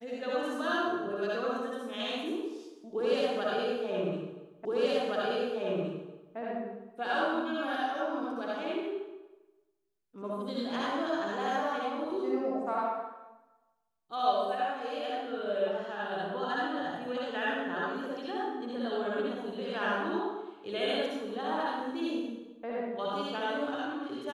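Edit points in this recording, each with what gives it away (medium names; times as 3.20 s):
4.65 s: repeat of the last 1.72 s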